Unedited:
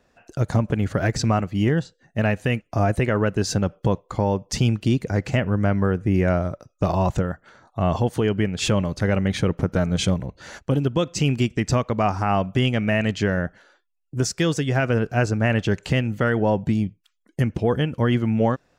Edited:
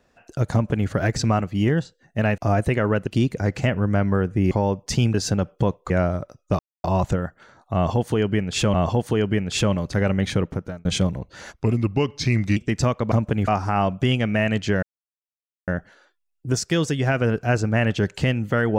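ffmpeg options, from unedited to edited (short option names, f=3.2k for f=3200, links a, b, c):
-filter_complex "[0:a]asplit=14[a][b][c][d][e][f][g][h][i][j][k][l][m][n];[a]atrim=end=2.382[o];[b]atrim=start=2.688:end=3.382[p];[c]atrim=start=4.768:end=6.212[q];[d]atrim=start=4.138:end=4.772[r];[e]atrim=start=3.378:end=4.142[s];[f]atrim=start=6.208:end=6.9,asetpts=PTS-STARTPTS,afade=t=out:st=0.688:d=0.004:c=hsin,apad=pad_dur=0.25[t];[g]atrim=start=6.9:end=8.802,asetpts=PTS-STARTPTS,afade=t=in:d=0.004:c=hsin[u];[h]atrim=start=7.808:end=9.92,asetpts=PTS-STARTPTS,afade=t=out:st=1.612:d=0.5[v];[i]atrim=start=9.92:end=10.604,asetpts=PTS-STARTPTS,afade=t=in:d=0.004:c=hsin[w];[j]atrim=start=10.6:end=11.46,asetpts=PTS-STARTPTS,asetrate=36603,aresample=44100[x];[k]atrim=start=11.456:end=12.012[y];[l]atrim=start=0.528:end=0.892[z];[m]atrim=start=12.008:end=13.36,asetpts=PTS-STARTPTS,afade=t=out:st=1.348:d=0.004:c=hsin,apad=pad_dur=0.85[aa];[n]atrim=start=13.36,asetpts=PTS-STARTPTS,afade=t=in:d=0.004:c=hsin[ab];[o][p]acrossfade=d=0.004:c1=hsin:c2=hsin[ac];[ac][q]acrossfade=d=0.004:c1=hsin:c2=hsin[ad];[ad][r]acrossfade=d=0.004:c1=hsin:c2=hsin[ae];[ae][s]acrossfade=d=0.004:c1=hsin:c2=hsin[af];[t][u]concat=n=2:v=0:a=1[ag];[af][ag]acrossfade=d=0.004:c1=hsin:c2=hsin[ah];[v][w]concat=n=2:v=0:a=1[ai];[ah][ai]acrossfade=d=0.004:c1=hsin:c2=hsin[aj];[aj][x]acrossfade=d=0.004:c1=hsin:c2=hsin[ak];[ak][y]acrossfade=d=0.004:c1=hsin:c2=hsin[al];[al][z]acrossfade=d=0.004:c1=hsin:c2=hsin[am];[aa][ab]concat=n=2:v=0:a=1[an];[am][an]acrossfade=d=0.004:c1=hsin:c2=hsin"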